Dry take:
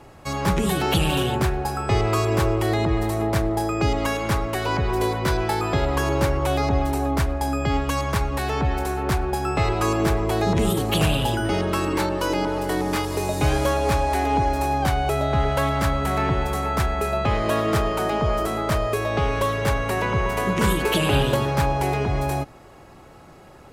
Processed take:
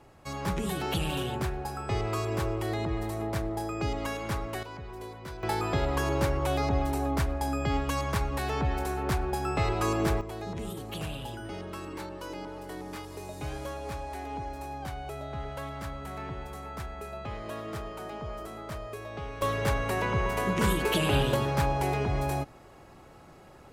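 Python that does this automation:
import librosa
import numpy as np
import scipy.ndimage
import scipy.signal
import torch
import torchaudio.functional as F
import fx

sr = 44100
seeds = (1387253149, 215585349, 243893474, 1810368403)

y = fx.gain(x, sr, db=fx.steps((0.0, -9.5), (4.63, -19.0), (5.43, -6.0), (10.21, -16.0), (19.42, -5.5)))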